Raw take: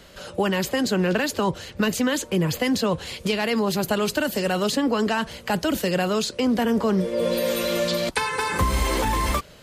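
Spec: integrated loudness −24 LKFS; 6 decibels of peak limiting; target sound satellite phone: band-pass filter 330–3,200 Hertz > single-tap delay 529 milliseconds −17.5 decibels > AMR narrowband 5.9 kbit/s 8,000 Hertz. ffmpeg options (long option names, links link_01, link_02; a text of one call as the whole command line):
ffmpeg -i in.wav -af "alimiter=limit=-16.5dB:level=0:latency=1,highpass=330,lowpass=3200,aecho=1:1:529:0.133,volume=6dB" -ar 8000 -c:a libopencore_amrnb -b:a 5900 out.amr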